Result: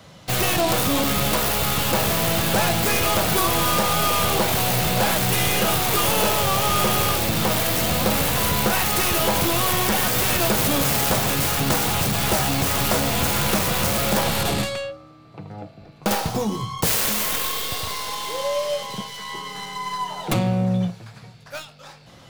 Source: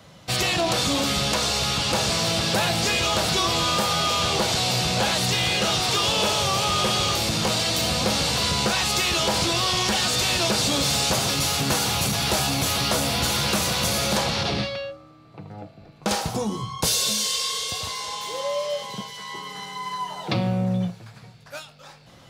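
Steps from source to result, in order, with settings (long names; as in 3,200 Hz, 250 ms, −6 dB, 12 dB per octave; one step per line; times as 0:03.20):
stylus tracing distortion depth 0.42 ms
level +2.5 dB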